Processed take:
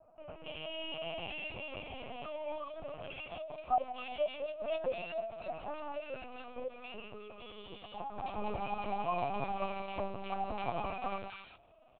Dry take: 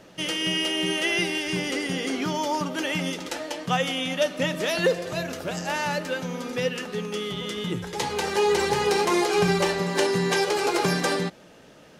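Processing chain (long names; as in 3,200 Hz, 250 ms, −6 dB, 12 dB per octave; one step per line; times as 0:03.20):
formant filter a
multiband delay without the direct sound lows, highs 270 ms, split 1,600 Hz
linear-prediction vocoder at 8 kHz pitch kept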